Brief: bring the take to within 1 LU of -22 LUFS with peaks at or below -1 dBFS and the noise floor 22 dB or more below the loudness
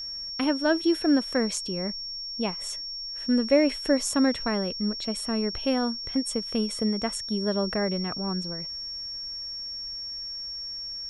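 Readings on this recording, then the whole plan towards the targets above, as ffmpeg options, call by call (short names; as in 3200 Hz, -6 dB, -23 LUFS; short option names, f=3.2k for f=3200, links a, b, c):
steady tone 5500 Hz; tone level -33 dBFS; loudness -27.5 LUFS; peak -9.5 dBFS; loudness target -22.0 LUFS
-> -af "bandreject=f=5.5k:w=30"
-af "volume=5.5dB"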